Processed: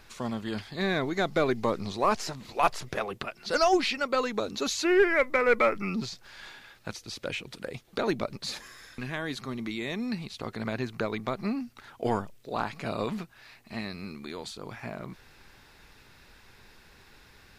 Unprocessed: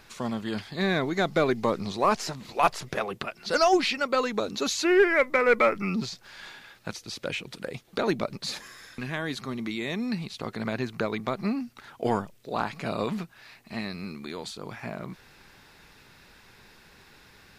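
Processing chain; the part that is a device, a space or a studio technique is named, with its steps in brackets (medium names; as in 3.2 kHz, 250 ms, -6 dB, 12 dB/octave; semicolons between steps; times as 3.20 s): low shelf boost with a cut just above (bass shelf 75 Hz +7.5 dB; peaking EQ 170 Hz -3.5 dB 0.53 oct); trim -2 dB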